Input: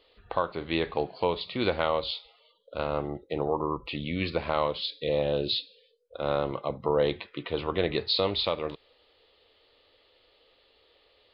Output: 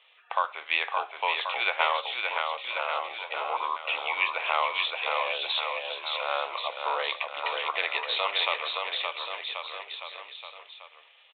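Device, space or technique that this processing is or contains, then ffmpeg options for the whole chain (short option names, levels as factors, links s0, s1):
musical greeting card: -filter_complex "[0:a]asettb=1/sr,asplit=3[s0][s1][s2];[s0]atrim=end=1.994[s3];[s1]atrim=start=1.99:end=2.82,asetpts=PTS-STARTPTS,afade=t=in:d=0.004:c=qsin,afade=t=out:st=0.826:d=0.004:c=qsin,aemphasis=mode=reproduction:type=riaa[s4];[s2]atrim=start=2.816[s5];[s3][s4]acrossfade=d=0.004:c1=hsin:c2=qsin[s6];[s6][s5]acrossfade=d=0.004:c1=qsin:c2=hsin,aecho=1:1:570|1083|1545|1960|2334:0.631|0.398|0.251|0.158|0.1,aresample=8000,aresample=44100,highpass=f=780:w=0.5412,highpass=f=780:w=1.3066,equalizer=f=2400:t=o:w=0.38:g=7,volume=1.58"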